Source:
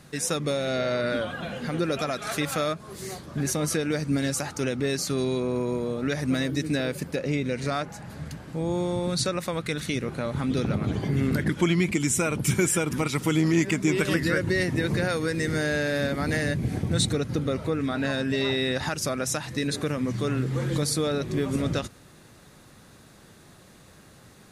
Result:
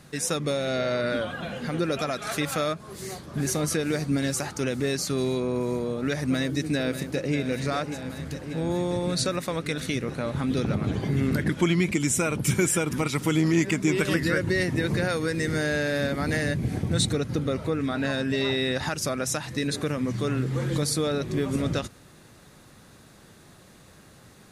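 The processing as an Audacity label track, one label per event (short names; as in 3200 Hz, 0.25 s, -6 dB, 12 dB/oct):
2.890000	3.290000	echo throw 0.44 s, feedback 80%, level -5 dB
6.210000	7.350000	echo throw 0.59 s, feedback 80%, level -10 dB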